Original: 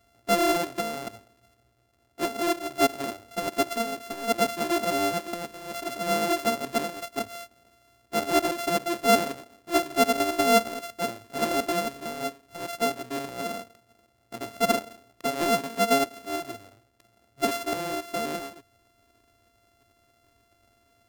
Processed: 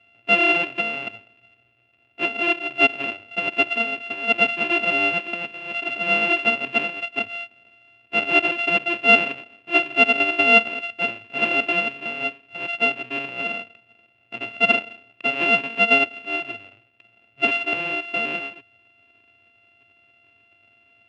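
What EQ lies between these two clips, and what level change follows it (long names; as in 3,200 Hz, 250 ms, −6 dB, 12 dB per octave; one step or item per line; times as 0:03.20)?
high-pass filter 88 Hz 24 dB per octave
low-pass with resonance 2,700 Hz, resonance Q 13
−1.0 dB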